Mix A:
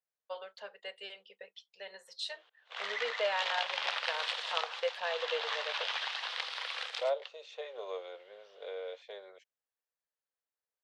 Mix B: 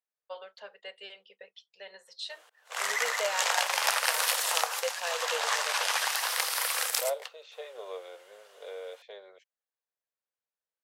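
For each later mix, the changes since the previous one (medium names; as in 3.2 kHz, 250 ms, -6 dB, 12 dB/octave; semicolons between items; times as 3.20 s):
background: remove four-pole ladder low-pass 4.1 kHz, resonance 50%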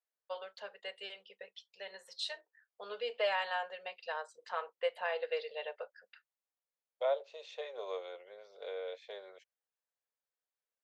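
background: muted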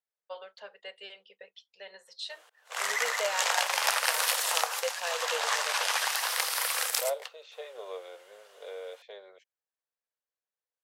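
background: unmuted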